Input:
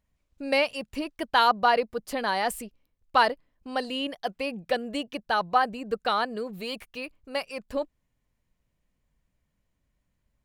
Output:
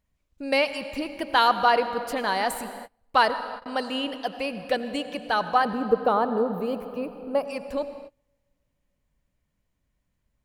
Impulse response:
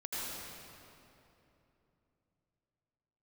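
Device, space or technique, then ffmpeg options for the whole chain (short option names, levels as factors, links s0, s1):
keyed gated reverb: -filter_complex "[0:a]asettb=1/sr,asplit=3[s0][s1][s2];[s0]atrim=end=5.654[s3];[s1]atrim=start=5.65:end=7.45,asetpts=PTS-STARTPTS,afade=t=in:d=0.004:c=qsin,afade=t=out:st=1.796:d=0.004:c=qsin,equalizer=f=125:t=o:w=1:g=5,equalizer=f=250:t=o:w=1:g=5,equalizer=f=500:t=o:w=1:g=6,equalizer=f=1000:t=o:w=1:g=4,equalizer=f=2000:t=o:w=1:g=-10,equalizer=f=4000:t=o:w=1:g=-11,equalizer=f=8000:t=o:w=1:g=-11[s4];[s2]atrim=start=7.446[s5];[s3][s4]acrossfade=d=0.004:c1=hsin:c2=qsin[s6];[s6][s5]acrossfade=d=0.004:c1=qsin:c2=hsin,asplit=3[s7][s8][s9];[1:a]atrim=start_sample=2205[s10];[s8][s10]afir=irnorm=-1:irlink=0[s11];[s9]apad=whole_len=460447[s12];[s11][s12]sidechaingate=range=0.0251:threshold=0.00112:ratio=16:detection=peak,volume=0.251[s13];[s7][s13]amix=inputs=2:normalize=0"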